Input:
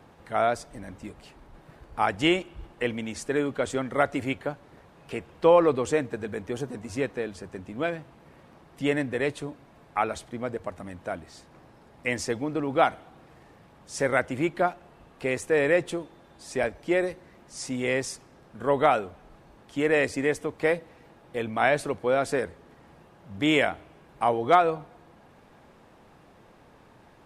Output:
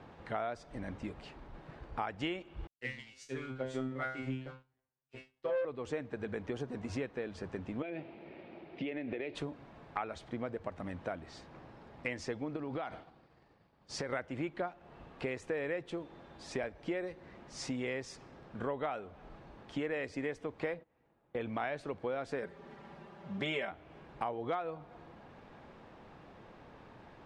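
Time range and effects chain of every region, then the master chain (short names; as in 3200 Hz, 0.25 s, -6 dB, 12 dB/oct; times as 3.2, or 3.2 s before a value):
2.67–5.65 resonator 130 Hz, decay 0.48 s, mix 100% + sample leveller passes 2 + three-band expander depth 100%
7.82–9.35 speaker cabinet 120–4300 Hz, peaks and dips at 130 Hz -7 dB, 350 Hz +10 dB, 640 Hz +5 dB, 1100 Hz -9 dB, 1600 Hz -4 dB, 2400 Hz +9 dB + compressor 12:1, threshold -30 dBFS
12.56–14.13 expander -45 dBFS + bell 4600 Hz +8.5 dB 0.26 oct + compressor 5:1, threshold -30 dBFS
20.74–21.41 gate -45 dBFS, range -19 dB + high shelf 4300 Hz -12 dB
22.42–23.71 HPF 110 Hz 6 dB/oct + comb 5.1 ms, depth 78%
whole clip: LPF 4400 Hz 12 dB/oct; compressor 5:1, threshold -35 dBFS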